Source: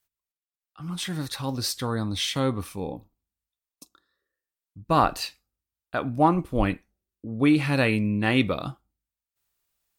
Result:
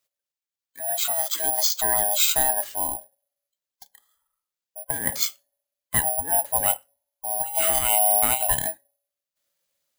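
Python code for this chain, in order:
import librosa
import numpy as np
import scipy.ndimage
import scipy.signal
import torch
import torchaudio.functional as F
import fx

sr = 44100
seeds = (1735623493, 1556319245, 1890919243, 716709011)

y = fx.band_swap(x, sr, width_hz=500)
y = fx.over_compress(y, sr, threshold_db=-24.0, ratio=-0.5)
y = fx.high_shelf(y, sr, hz=3500.0, db=7.5)
y = (np.kron(scipy.signal.resample_poly(y, 1, 4), np.eye(4)[0]) * 4)[:len(y)]
y = fx.low_shelf(y, sr, hz=320.0, db=-7.5, at=(1.07, 1.75))
y = y * librosa.db_to_amplitude(-3.0)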